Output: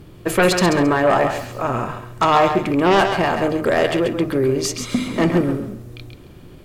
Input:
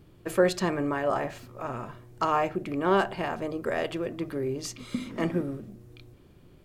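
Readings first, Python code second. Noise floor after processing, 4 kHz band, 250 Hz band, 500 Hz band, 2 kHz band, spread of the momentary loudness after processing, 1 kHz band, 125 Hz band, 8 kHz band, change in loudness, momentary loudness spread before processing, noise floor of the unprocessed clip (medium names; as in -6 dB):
-42 dBFS, +14.0 dB, +11.5 dB, +10.5 dB, +12.0 dB, 9 LU, +11.5 dB, +12.0 dB, +13.5 dB, +11.0 dB, 12 LU, -55 dBFS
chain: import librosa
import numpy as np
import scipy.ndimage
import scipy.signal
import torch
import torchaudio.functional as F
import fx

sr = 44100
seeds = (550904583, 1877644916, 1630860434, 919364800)

y = fx.fold_sine(x, sr, drive_db=9, ceiling_db=-10.0)
y = fx.echo_thinned(y, sr, ms=135, feedback_pct=23, hz=420.0, wet_db=-6.5)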